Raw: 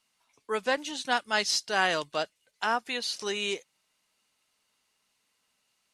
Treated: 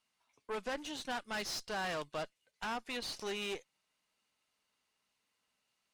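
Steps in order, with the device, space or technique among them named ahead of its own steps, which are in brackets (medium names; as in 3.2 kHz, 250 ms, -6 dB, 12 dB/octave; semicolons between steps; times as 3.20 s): tube preamp driven hard (valve stage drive 32 dB, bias 0.7; treble shelf 4.9 kHz -6 dB); trim -1.5 dB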